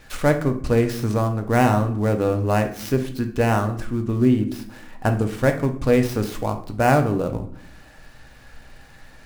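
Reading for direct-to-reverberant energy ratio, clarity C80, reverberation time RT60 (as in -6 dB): 5.5 dB, 15.5 dB, 0.60 s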